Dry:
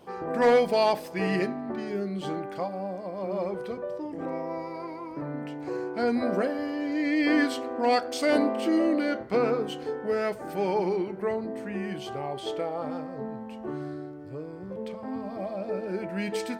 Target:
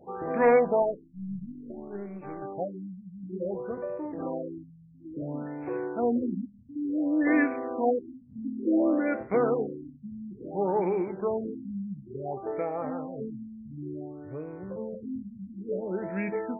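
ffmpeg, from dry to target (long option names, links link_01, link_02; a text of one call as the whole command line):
ffmpeg -i in.wav -filter_complex "[0:a]asettb=1/sr,asplit=3[link_01][link_02][link_03];[link_01]atrim=end=0.824[link_04];[link_02]atrim=start=0.82:end=2.42,asetpts=PTS-STARTPTS,afade=type=in:duration=0.004:curve=qsin,afade=type=out:start_time=1.596:duration=0.004:curve=qsin,aeval=exprs='0.237*(cos(1*acos(clip(val(0)/0.237,-1,1)))-cos(1*PI/2))+0.0473*(cos(3*acos(clip(val(0)/0.237,-1,1)))-cos(3*PI/2))+0.00668*(cos(6*acos(clip(val(0)/0.237,-1,1)))-cos(6*PI/2))+0.00944*(cos(8*acos(clip(val(0)/0.237,-1,1)))-cos(8*PI/2))':channel_layout=same[link_05];[link_03]atrim=start=2.416[link_06];[link_04][link_05]acrossfade=duration=0.004:curve1=hsin:curve2=qsin[link_07];[link_07][link_06]acrossfade=duration=0.004:curve1=qsin:curve2=hsin,afftfilt=real='re*lt(b*sr/1024,230*pow(2700/230,0.5+0.5*sin(2*PI*0.57*pts/sr)))':imag='im*lt(b*sr/1024,230*pow(2700/230,0.5+0.5*sin(2*PI*0.57*pts/sr)))':win_size=1024:overlap=0.75" out.wav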